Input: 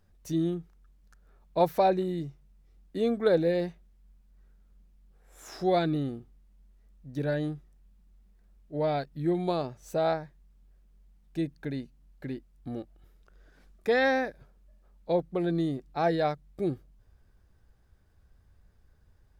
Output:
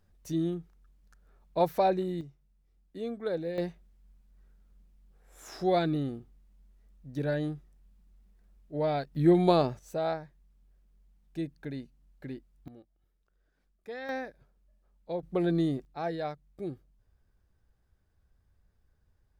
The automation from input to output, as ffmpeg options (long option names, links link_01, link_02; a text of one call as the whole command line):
ffmpeg -i in.wav -af "asetnsamples=nb_out_samples=441:pad=0,asendcmd='2.21 volume volume -9dB;3.58 volume volume -1dB;9.15 volume volume 6dB;9.79 volume volume -4dB;12.68 volume volume -16dB;14.09 volume volume -8dB;15.23 volume volume 1dB;15.85 volume volume -7.5dB',volume=-2dB" out.wav